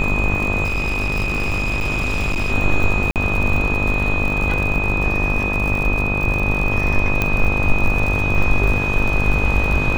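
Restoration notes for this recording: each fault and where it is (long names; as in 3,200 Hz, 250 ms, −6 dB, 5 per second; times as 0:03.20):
mains buzz 50 Hz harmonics 26 −23 dBFS
surface crackle 71 per second −23 dBFS
whistle 2,500 Hz −21 dBFS
0:00.64–0:02.53: clipping −16.5 dBFS
0:03.11–0:03.16: drop-out 48 ms
0:07.22: click −5 dBFS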